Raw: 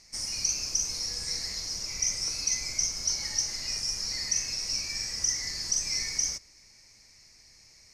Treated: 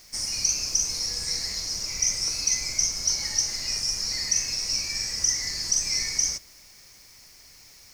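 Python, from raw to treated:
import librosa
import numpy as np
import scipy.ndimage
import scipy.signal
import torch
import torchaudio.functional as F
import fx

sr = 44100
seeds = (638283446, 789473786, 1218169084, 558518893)

y = fx.high_shelf(x, sr, hz=11000.0, db=4.0)
y = fx.quant_dither(y, sr, seeds[0], bits=10, dither='triangular')
y = y * librosa.db_to_amplitude(3.5)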